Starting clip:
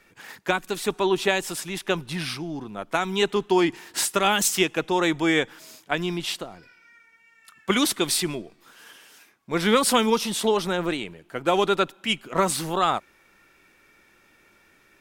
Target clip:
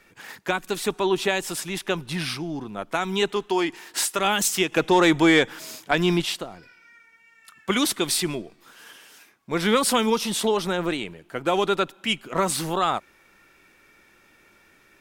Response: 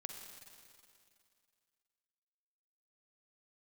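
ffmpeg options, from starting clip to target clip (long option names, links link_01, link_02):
-filter_complex "[0:a]asplit=2[link_01][link_02];[link_02]alimiter=limit=-16.5dB:level=0:latency=1:release=182,volume=-1dB[link_03];[link_01][link_03]amix=inputs=2:normalize=0,asettb=1/sr,asplit=3[link_04][link_05][link_06];[link_04]atrim=end=3.334[link_07];[link_05]atrim=start=3.33:end=4.19,asetpts=PTS-STARTPTS,afade=type=in:duration=0.004:curve=qsin,afade=type=out:start_time=0.856:duration=0.004:curve=qsin,equalizer=frequency=86:width=0.43:gain=-10.5[link_08];[link_06]atrim=start=4.186[link_09];[link_07][link_08]acrossfade=duration=0.004:curve1=hsin:curve2=qsin[link_10];[link_10][link_09]acrossfade=duration=0.004:curve1=qsin:curve2=hsin,asettb=1/sr,asplit=3[link_11][link_12][link_13];[link_11]atrim=end=4.724[link_14];[link_12]atrim=start=4.72:end=6.22,asetpts=PTS-STARTPTS,afade=type=in:duration=0.004:curve=qsin,afade=type=out:start_time=1.496:duration=0.004:curve=qsin,acontrast=54[link_15];[link_13]atrim=start=6.216[link_16];[link_14][link_15]acrossfade=duration=0.004:curve1=hsin:curve2=qsin[link_17];[link_17][link_16]acrossfade=duration=0.004:curve1=qsin:curve2=hsin,volume=-4dB"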